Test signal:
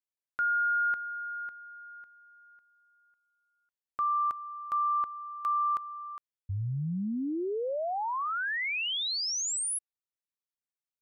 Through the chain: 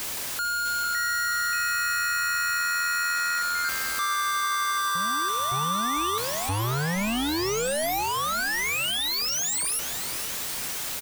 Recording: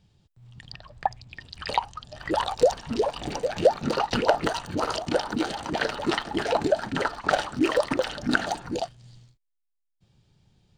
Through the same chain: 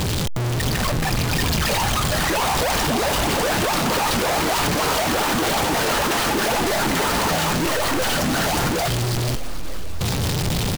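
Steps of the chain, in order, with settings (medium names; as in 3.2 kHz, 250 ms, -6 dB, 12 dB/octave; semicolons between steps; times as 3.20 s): one-bit comparator; ever faster or slower copies 655 ms, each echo +5 st, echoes 2, each echo -6 dB; frequency-shifting echo 444 ms, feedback 64%, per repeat -84 Hz, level -13 dB; trim +6 dB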